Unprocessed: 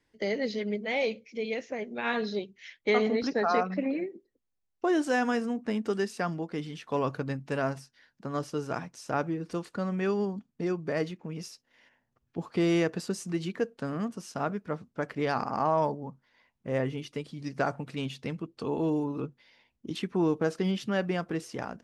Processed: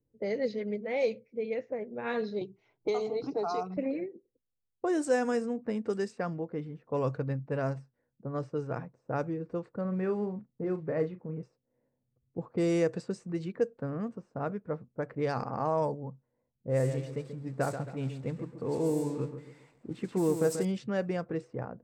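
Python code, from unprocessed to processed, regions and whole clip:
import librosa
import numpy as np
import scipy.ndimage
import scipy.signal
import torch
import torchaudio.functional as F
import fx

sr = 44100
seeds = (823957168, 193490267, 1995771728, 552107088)

y = fx.chain(x, sr, fx.high_shelf(hz=4800.0, db=4.5),
    fx.fixed_phaser(hz=350.0, stages=8),
    fx.band_squash(depth_pct=70), at=(2.41, 3.77))
y = fx.chain(y, sr, fx.block_float(bits=5),
    fx.lowpass(hz=2100.0, slope=12),
    fx.doubler(ms=38.0, db=-10.0), at=(9.81, 11.43))
y = fx.chain(y, sr, fx.crossing_spikes(level_db=-30.0),
    fx.echo_feedback(ms=135, feedback_pct=38, wet_db=-9), at=(16.69, 20.65))
y = fx.peak_eq(y, sr, hz=1700.0, db=-2.5, octaves=2.7)
y = fx.env_lowpass(y, sr, base_hz=390.0, full_db=-23.5)
y = fx.graphic_eq_31(y, sr, hz=(125, 500, 3150, 8000), db=(10, 8, -7, 12))
y = y * 10.0 ** (-3.5 / 20.0)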